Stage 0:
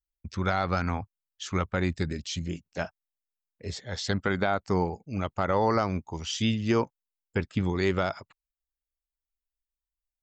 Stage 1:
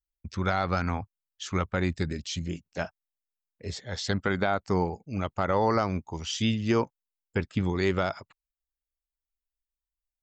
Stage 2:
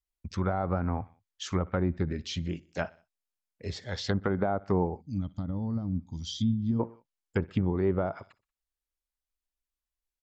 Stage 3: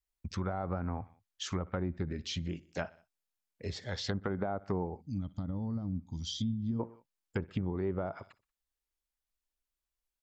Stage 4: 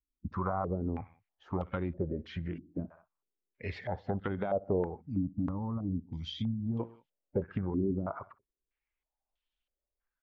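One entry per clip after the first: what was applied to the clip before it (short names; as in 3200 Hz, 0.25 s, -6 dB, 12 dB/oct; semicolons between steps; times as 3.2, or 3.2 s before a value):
nothing audible
feedback echo 61 ms, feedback 48%, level -23 dB; treble ducked by the level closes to 840 Hz, closed at -23 dBFS; spectral gain 5.01–6.8, 310–3100 Hz -20 dB
compressor 2:1, threshold -35 dBFS, peak gain reduction 8 dB
bin magnitudes rounded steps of 15 dB; stepped low-pass 3.1 Hz 280–3200 Hz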